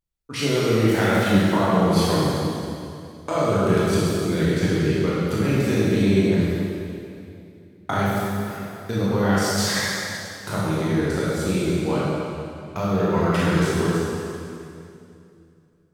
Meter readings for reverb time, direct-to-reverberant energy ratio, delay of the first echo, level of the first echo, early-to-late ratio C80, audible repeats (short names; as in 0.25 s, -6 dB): 2.6 s, -8.5 dB, none, none, -2.0 dB, none